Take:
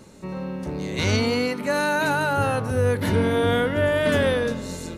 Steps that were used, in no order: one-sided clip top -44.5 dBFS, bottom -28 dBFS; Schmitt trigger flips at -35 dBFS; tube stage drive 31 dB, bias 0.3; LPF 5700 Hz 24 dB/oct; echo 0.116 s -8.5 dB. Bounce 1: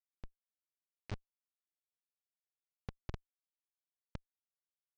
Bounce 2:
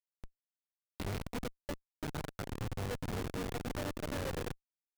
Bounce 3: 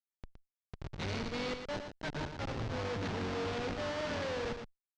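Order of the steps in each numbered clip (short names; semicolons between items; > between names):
echo > tube stage > one-sided clip > Schmitt trigger > LPF; echo > one-sided clip > LPF > tube stage > Schmitt trigger; one-sided clip > Schmitt trigger > echo > tube stage > LPF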